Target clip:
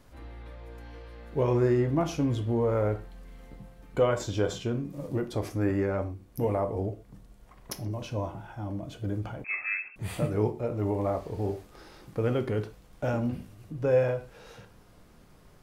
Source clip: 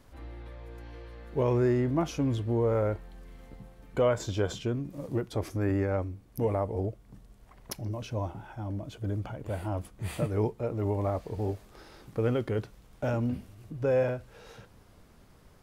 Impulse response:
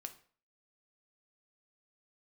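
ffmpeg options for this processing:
-filter_complex "[1:a]atrim=start_sample=2205,atrim=end_sample=6174[s0];[0:a][s0]afir=irnorm=-1:irlink=0,asettb=1/sr,asplit=3[s1][s2][s3];[s1]atrim=end=9.444[s4];[s2]atrim=start=9.44:end=9.96,asetpts=PTS-STARTPTS,afade=t=in:d=0.004:c=qsin,afade=t=out:st=0.516:d=0.004:c=qsin,lowpass=f=2300:t=q:w=0.5098,lowpass=f=2300:t=q:w=0.6013,lowpass=f=2300:t=q:w=0.9,lowpass=f=2300:t=q:w=2.563,afreqshift=-2700[s5];[s3]atrim=start=9.956[s6];[s4][s5]acrossfade=d=0.004:c1=hsin:c2=qsin[s7];[s7][s6]acrossfade=d=0.004:c1=qsin:c2=hsin,volume=1.88"

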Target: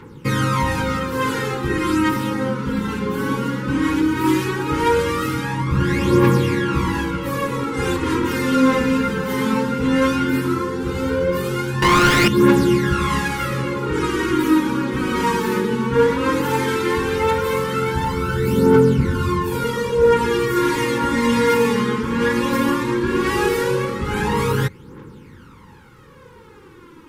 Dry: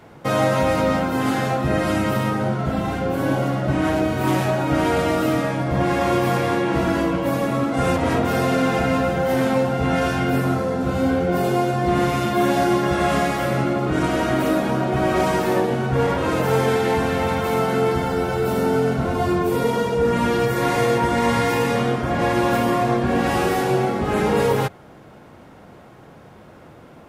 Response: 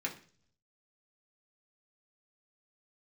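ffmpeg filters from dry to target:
-filter_complex "[0:a]asuperstop=centerf=670:order=8:qfactor=2.1,asettb=1/sr,asplit=3[s0][s1][s2];[s0]atrim=end=11.824[s3];[s1]atrim=start=11.82:end=12.28,asetpts=PTS-STARTPTS,afade=t=in:d=0.004:c=qsin,afade=t=out:st=0.456:d=0.004:c=qsin,asplit=2[s4][s5];[s5]highpass=f=720:p=1,volume=79.4,asoftclip=type=tanh:threshold=0.376[s6];[s4][s6]amix=inputs=2:normalize=0,lowpass=f=3400:p=1,volume=0.501[s7];[s2]atrim=start=12.276[s8];[s3][s7]acrossfade=d=0.004:c1=hsin:c2=qsin[s9];[s9][s8]acrossfade=d=0.004:c1=qsin:c2=hsin,aphaser=in_gain=1:out_gain=1:delay=4.8:decay=0.61:speed=0.16:type=triangular"

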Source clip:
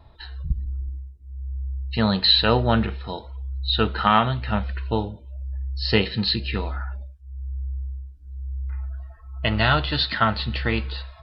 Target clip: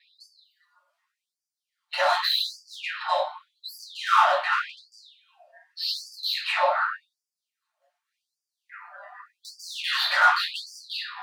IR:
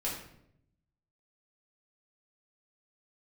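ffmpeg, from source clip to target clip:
-filter_complex "[0:a]bandreject=f=900:w=6.2,asplit=2[s0][s1];[s1]highpass=f=720:p=1,volume=25.1,asoftclip=type=tanh:threshold=0.562[s2];[s0][s2]amix=inputs=2:normalize=0,lowpass=f=1000:p=1,volume=0.501,aeval=exprs='val(0)*sin(2*PI*87*n/s)':c=same[s3];[1:a]atrim=start_sample=2205,asetrate=83790,aresample=44100[s4];[s3][s4]afir=irnorm=-1:irlink=0,afftfilt=real='re*gte(b*sr/1024,540*pow(4600/540,0.5+0.5*sin(2*PI*0.86*pts/sr)))':imag='im*gte(b*sr/1024,540*pow(4600/540,0.5+0.5*sin(2*PI*0.86*pts/sr)))':win_size=1024:overlap=0.75,volume=1.41"

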